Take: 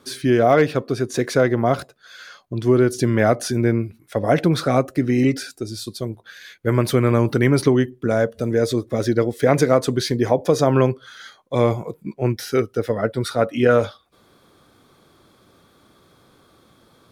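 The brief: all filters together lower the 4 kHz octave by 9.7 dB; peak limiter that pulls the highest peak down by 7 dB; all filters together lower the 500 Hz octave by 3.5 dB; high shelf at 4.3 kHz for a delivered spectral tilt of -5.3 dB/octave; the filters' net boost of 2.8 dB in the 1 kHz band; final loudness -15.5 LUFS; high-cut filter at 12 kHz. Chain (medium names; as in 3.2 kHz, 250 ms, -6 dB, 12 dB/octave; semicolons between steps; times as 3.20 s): low-pass 12 kHz; peaking EQ 500 Hz -6.5 dB; peaking EQ 1 kHz +8 dB; peaking EQ 4 kHz -8 dB; treble shelf 4.3 kHz -7.5 dB; trim +7.5 dB; peak limiter -1.5 dBFS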